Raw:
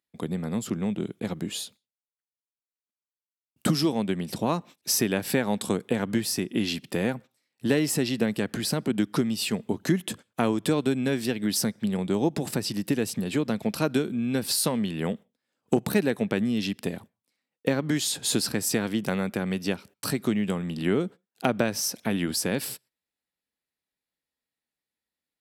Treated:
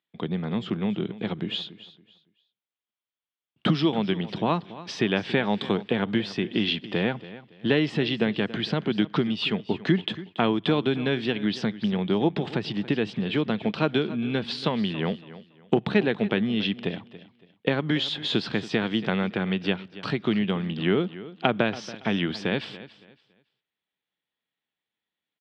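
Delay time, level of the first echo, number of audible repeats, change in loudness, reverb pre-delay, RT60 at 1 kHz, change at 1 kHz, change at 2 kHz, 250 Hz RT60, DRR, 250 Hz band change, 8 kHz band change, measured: 0.281 s, -16.5 dB, 2, +1.0 dB, none, none, +3.0 dB, +3.5 dB, none, none, +1.0 dB, under -20 dB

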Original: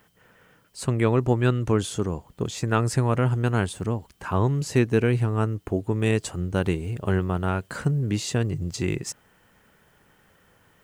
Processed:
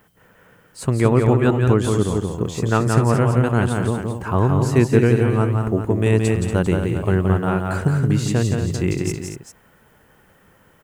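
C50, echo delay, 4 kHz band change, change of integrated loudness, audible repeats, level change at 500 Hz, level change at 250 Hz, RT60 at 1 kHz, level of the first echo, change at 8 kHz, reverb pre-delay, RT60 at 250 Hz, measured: none, 0.172 s, +1.5 dB, +6.0 dB, 3, +6.5 dB, +6.5 dB, none, -4.5 dB, +3.0 dB, none, none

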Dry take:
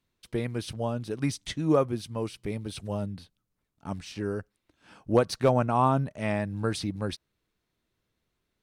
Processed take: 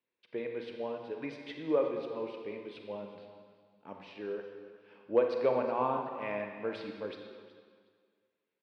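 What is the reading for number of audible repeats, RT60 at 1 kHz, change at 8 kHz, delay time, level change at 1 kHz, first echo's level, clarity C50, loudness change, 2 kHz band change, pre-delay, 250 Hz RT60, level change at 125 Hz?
2, 1.8 s, under -25 dB, 0.368 s, -7.0 dB, -17.5 dB, 4.0 dB, -6.0 dB, -5.5 dB, 34 ms, 1.7 s, -22.0 dB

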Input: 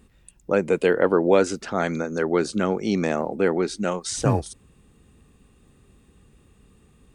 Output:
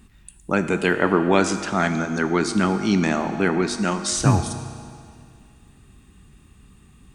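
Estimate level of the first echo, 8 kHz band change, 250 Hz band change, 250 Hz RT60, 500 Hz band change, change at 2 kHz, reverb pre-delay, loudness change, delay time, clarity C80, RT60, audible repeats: none, +5.5 dB, +4.0 dB, 2.2 s, -2.5 dB, +5.5 dB, 6 ms, +1.5 dB, none, 10.5 dB, 2.2 s, none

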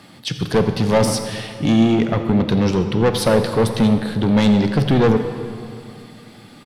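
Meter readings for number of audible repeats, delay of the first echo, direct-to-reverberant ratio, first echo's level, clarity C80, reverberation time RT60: 1, 86 ms, 7.0 dB, -17.5 dB, 8.5 dB, 2.4 s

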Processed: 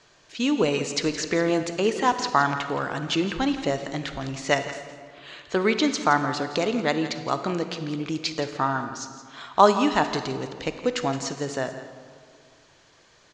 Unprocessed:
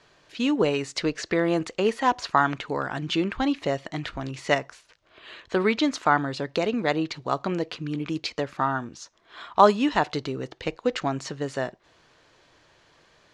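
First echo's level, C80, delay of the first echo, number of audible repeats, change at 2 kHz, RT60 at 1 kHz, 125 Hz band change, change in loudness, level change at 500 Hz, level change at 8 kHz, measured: -13.5 dB, 9.0 dB, 0.169 s, 1, +1.0 dB, 2.0 s, +0.5 dB, +1.0 dB, +0.5 dB, +7.0 dB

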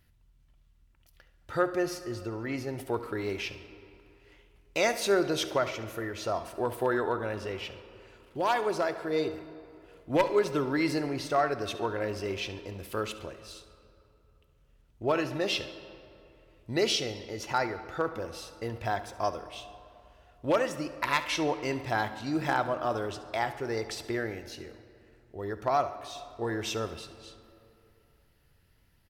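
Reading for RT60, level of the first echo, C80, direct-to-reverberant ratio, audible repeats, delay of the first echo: 2.8 s, -16.0 dB, 13.0 dB, 10.5 dB, 2, 70 ms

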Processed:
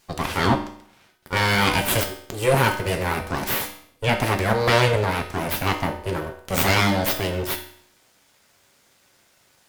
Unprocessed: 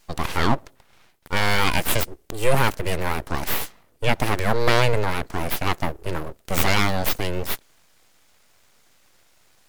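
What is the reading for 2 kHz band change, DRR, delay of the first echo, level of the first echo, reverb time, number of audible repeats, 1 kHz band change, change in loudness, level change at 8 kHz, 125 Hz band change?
+2.0 dB, 3.5 dB, none, none, 0.60 s, none, +1.5 dB, +1.5 dB, +1.5 dB, +2.0 dB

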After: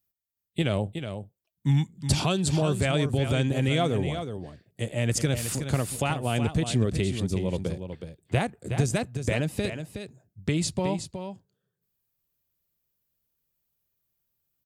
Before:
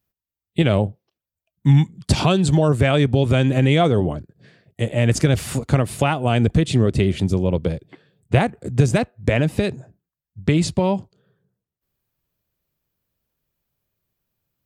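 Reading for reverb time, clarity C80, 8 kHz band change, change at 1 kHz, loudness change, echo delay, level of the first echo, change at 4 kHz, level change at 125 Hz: none, none, -0.5 dB, -8.0 dB, -8.0 dB, 0.368 s, -8.5 dB, -4.5 dB, -8.0 dB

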